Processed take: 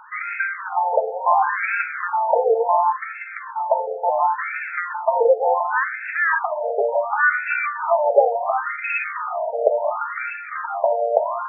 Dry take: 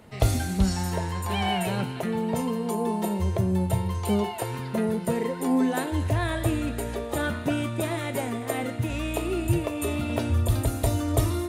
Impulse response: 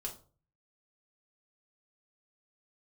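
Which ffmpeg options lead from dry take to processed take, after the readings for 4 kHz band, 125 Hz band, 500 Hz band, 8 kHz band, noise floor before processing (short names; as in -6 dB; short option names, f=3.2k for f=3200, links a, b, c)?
under -40 dB, under -40 dB, +9.5 dB, under -40 dB, -35 dBFS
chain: -filter_complex "[0:a]acrossover=split=210[a][b];[a]acrusher=bits=7:mix=0:aa=0.000001[c];[c][b]amix=inputs=2:normalize=0,alimiter=level_in=17dB:limit=-1dB:release=50:level=0:latency=1,afftfilt=real='re*between(b*sr/1024,600*pow(1900/600,0.5+0.5*sin(2*PI*0.7*pts/sr))/1.41,600*pow(1900/600,0.5+0.5*sin(2*PI*0.7*pts/sr))*1.41)':imag='im*between(b*sr/1024,600*pow(1900/600,0.5+0.5*sin(2*PI*0.7*pts/sr))/1.41,600*pow(1900/600,0.5+0.5*sin(2*PI*0.7*pts/sr))*1.41)':win_size=1024:overlap=0.75,volume=1dB"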